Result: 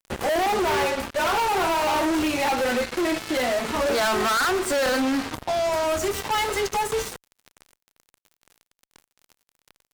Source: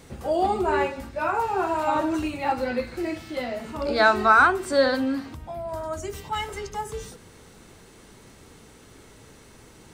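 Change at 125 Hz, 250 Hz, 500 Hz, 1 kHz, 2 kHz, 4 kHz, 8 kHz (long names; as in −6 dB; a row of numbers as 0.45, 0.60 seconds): −0.5, +2.0, +2.0, 0.0, −1.0, +7.0, +11.0 decibels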